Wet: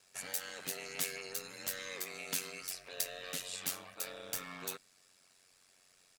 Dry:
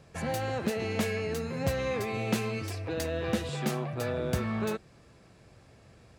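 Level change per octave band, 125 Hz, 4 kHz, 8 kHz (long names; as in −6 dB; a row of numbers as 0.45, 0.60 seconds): −25.5, −1.5, +4.5 decibels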